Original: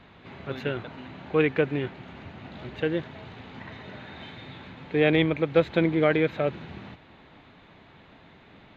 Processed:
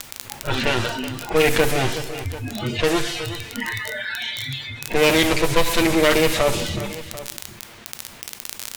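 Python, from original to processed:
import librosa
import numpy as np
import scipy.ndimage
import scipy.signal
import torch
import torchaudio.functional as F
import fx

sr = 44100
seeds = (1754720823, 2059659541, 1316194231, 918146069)

p1 = fx.lower_of_two(x, sr, delay_ms=8.6)
p2 = fx.quant_dither(p1, sr, seeds[0], bits=6, dither='triangular')
p3 = p1 + (p2 * librosa.db_to_amplitude(-11.0))
p4 = fx.low_shelf(p3, sr, hz=67.0, db=7.5)
p5 = fx.env_lowpass(p4, sr, base_hz=2100.0, full_db=-18.5)
p6 = fx.noise_reduce_blind(p5, sr, reduce_db=28)
p7 = p6 + fx.echo_feedback(p6, sr, ms=370, feedback_pct=34, wet_db=-23, dry=0)
p8 = fx.dmg_crackle(p7, sr, seeds[1], per_s=21.0, level_db=-38.0)
p9 = fx.high_shelf(p8, sr, hz=2500.0, db=11.5)
p10 = fx.rev_plate(p9, sr, seeds[2], rt60_s=0.75, hf_ratio=0.9, predelay_ms=0, drr_db=13.5)
p11 = fx.env_flatten(p10, sr, amount_pct=50)
y = p11 * librosa.db_to_amplitude(1.0)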